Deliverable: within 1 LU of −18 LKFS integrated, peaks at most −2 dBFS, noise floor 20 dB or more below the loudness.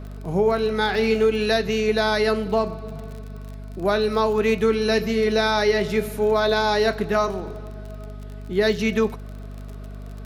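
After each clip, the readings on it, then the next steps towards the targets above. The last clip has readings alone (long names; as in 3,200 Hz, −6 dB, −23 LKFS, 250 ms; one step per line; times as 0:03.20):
crackle rate 39 per second; mains hum 50 Hz; hum harmonics up to 250 Hz; level of the hum −33 dBFS; integrated loudness −21.5 LKFS; sample peak −8.0 dBFS; target loudness −18.0 LKFS
→ click removal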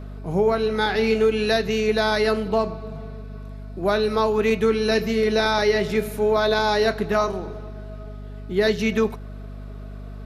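crackle rate 0.39 per second; mains hum 50 Hz; hum harmonics up to 250 Hz; level of the hum −33 dBFS
→ mains-hum notches 50/100/150/200/250 Hz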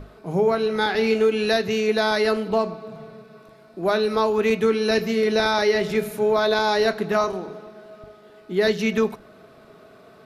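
mains hum none found; integrated loudness −21.5 LKFS; sample peak −8.5 dBFS; target loudness −18.0 LKFS
→ level +3.5 dB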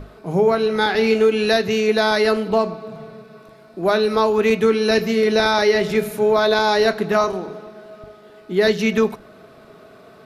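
integrated loudness −18.0 LKFS; sample peak −5.0 dBFS; background noise floor −46 dBFS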